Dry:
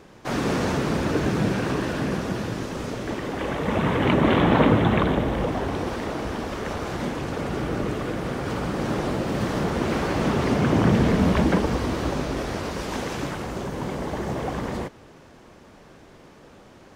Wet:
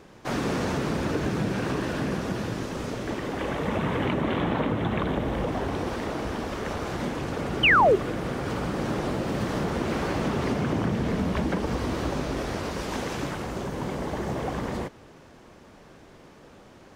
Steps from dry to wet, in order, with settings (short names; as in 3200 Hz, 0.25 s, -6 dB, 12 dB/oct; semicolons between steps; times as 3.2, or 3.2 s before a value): compressor 6:1, threshold -21 dBFS, peak gain reduction 8.5 dB; painted sound fall, 7.63–7.96, 350–3200 Hz -16 dBFS; gain -1.5 dB